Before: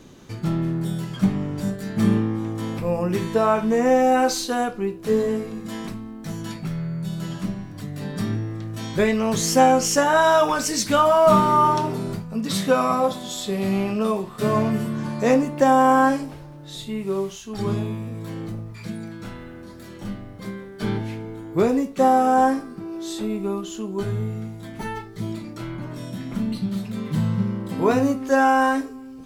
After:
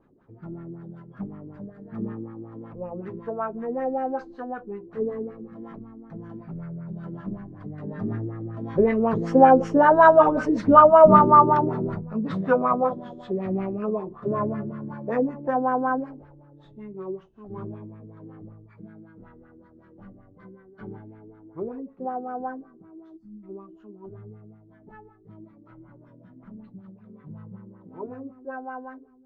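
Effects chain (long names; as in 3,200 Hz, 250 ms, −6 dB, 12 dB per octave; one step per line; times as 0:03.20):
source passing by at 0:10.52, 8 m/s, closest 11 metres
gain on a spectral selection 0:23.17–0:23.44, 320–4,300 Hz −27 dB
auto-filter low-pass sine 5.3 Hz 340–1,600 Hz
level +1 dB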